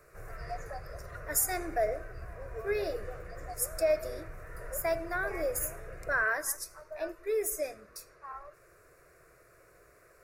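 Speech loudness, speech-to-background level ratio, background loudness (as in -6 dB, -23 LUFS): -33.0 LUFS, 12.5 dB, -45.5 LUFS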